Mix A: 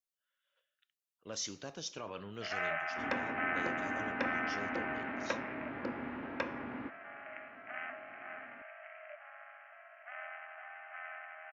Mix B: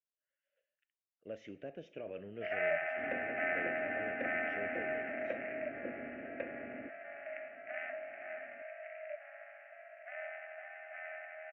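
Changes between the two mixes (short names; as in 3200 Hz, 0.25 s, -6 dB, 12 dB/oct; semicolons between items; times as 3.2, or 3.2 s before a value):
speech -5.0 dB; second sound -9.0 dB; master: add EQ curve 130 Hz 0 dB, 640 Hz +8 dB, 1000 Hz -18 dB, 1800 Hz +2 dB, 2700 Hz 0 dB, 4400 Hz -30 dB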